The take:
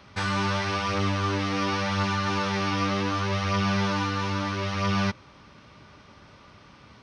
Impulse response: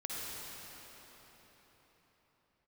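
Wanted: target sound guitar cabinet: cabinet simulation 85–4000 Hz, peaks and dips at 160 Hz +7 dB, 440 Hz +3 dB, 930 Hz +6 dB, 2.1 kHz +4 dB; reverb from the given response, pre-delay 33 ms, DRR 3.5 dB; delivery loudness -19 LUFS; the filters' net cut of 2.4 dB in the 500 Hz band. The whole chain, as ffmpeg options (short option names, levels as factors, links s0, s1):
-filter_complex "[0:a]equalizer=f=500:t=o:g=-5,asplit=2[s0][s1];[1:a]atrim=start_sample=2205,adelay=33[s2];[s1][s2]afir=irnorm=-1:irlink=0,volume=0.501[s3];[s0][s3]amix=inputs=2:normalize=0,highpass=85,equalizer=f=160:t=q:w=4:g=7,equalizer=f=440:t=q:w=4:g=3,equalizer=f=930:t=q:w=4:g=6,equalizer=f=2100:t=q:w=4:g=4,lowpass=f=4000:w=0.5412,lowpass=f=4000:w=1.3066,volume=1.68"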